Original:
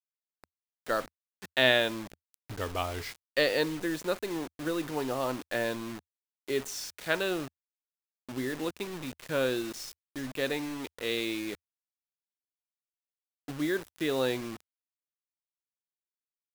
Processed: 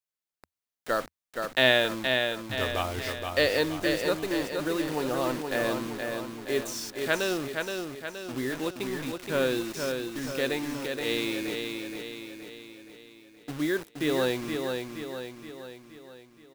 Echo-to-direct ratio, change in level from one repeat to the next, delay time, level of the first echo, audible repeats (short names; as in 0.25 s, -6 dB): -3.5 dB, -5.5 dB, 0.472 s, -5.0 dB, 6